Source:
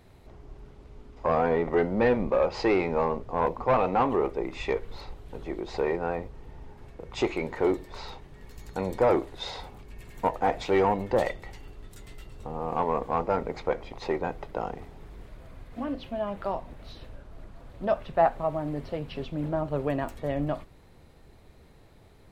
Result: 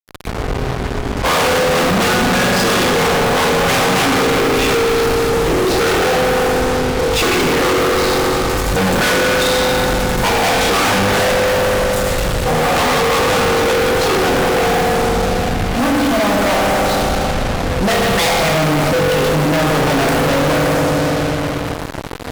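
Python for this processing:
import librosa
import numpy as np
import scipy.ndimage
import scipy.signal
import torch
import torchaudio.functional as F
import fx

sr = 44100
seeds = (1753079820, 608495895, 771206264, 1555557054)

y = 10.0 ** (-24.5 / 20.0) * (np.abs((x / 10.0 ** (-24.5 / 20.0) + 3.0) % 4.0 - 2.0) - 1.0)
y = fx.rev_fdn(y, sr, rt60_s=2.8, lf_ratio=1.2, hf_ratio=0.55, size_ms=12.0, drr_db=-3.5)
y = fx.fuzz(y, sr, gain_db=51.0, gate_db=-45.0)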